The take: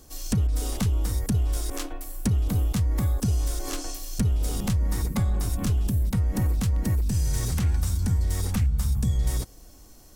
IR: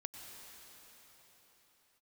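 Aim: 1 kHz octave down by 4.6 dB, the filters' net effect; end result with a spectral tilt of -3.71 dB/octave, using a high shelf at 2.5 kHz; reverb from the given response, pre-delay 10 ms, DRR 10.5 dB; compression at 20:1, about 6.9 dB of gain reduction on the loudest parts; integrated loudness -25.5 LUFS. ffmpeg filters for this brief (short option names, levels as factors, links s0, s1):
-filter_complex "[0:a]equalizer=f=1000:t=o:g=-7.5,highshelf=f=2500:g=7,acompressor=threshold=0.0501:ratio=20,asplit=2[s0][s1];[1:a]atrim=start_sample=2205,adelay=10[s2];[s1][s2]afir=irnorm=-1:irlink=0,volume=0.398[s3];[s0][s3]amix=inputs=2:normalize=0,volume=2"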